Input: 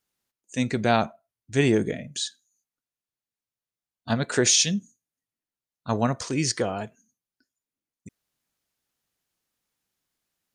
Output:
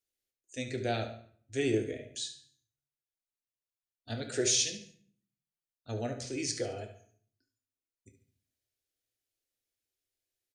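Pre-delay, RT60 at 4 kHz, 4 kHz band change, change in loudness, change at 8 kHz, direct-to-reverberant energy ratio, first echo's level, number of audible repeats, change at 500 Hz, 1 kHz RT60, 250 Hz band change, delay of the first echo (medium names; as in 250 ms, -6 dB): 8 ms, 0.50 s, -8.0 dB, -9.0 dB, -7.5 dB, 3.0 dB, -12.0 dB, 2, -7.5 dB, 0.55 s, -11.0 dB, 71 ms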